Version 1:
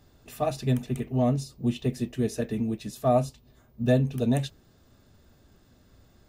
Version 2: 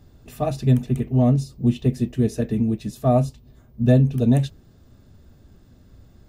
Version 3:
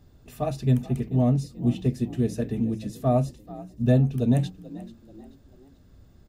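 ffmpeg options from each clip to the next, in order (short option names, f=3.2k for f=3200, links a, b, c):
-af "lowshelf=f=350:g=10"
-filter_complex "[0:a]bandreject=f=108.8:t=h:w=4,bandreject=f=217.6:t=h:w=4,bandreject=f=326.4:t=h:w=4,asplit=4[a][b][c][d];[b]adelay=436,afreqshift=46,volume=-18dB[e];[c]adelay=872,afreqshift=92,volume=-26.2dB[f];[d]adelay=1308,afreqshift=138,volume=-34.4dB[g];[a][e][f][g]amix=inputs=4:normalize=0,volume=-4dB"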